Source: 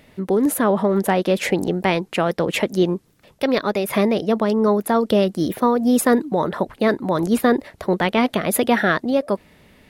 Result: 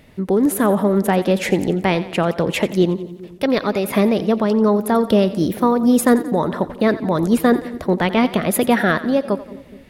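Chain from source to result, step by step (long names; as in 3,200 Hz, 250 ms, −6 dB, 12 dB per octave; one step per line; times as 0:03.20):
low-shelf EQ 210 Hz +6 dB
echo with a time of its own for lows and highs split 460 Hz, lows 209 ms, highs 88 ms, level −15 dB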